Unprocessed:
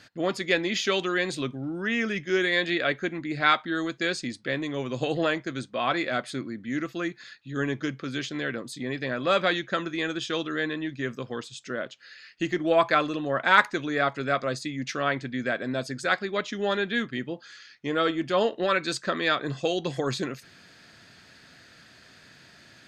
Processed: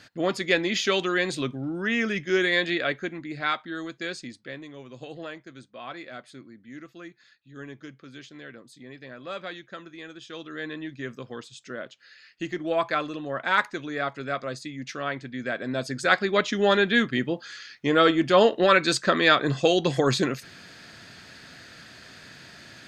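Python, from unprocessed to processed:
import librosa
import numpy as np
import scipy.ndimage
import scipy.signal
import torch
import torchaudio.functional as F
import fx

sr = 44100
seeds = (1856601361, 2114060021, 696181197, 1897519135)

y = fx.gain(x, sr, db=fx.line((2.53, 1.5), (3.49, -5.5), (4.18, -5.5), (4.79, -12.5), (10.21, -12.5), (10.75, -4.0), (15.3, -4.0), (16.3, 6.0)))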